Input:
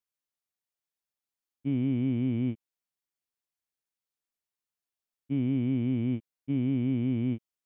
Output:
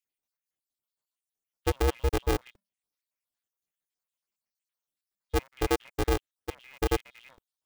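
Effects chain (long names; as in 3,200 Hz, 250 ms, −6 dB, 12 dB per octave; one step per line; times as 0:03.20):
time-frequency cells dropped at random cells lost 68%
0:02.40–0:05.42: frequency shifter −19 Hz
ring modulator with a square carrier 200 Hz
level +4.5 dB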